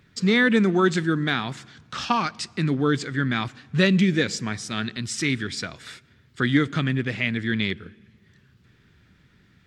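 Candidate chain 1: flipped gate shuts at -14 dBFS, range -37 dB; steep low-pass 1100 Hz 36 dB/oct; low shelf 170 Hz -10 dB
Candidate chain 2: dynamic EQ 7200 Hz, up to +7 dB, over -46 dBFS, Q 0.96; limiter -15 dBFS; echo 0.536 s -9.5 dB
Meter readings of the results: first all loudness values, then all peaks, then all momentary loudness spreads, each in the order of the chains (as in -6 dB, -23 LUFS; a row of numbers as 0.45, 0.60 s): -39.0, -26.0 LUFS; -15.0, -12.5 dBFS; 21, 12 LU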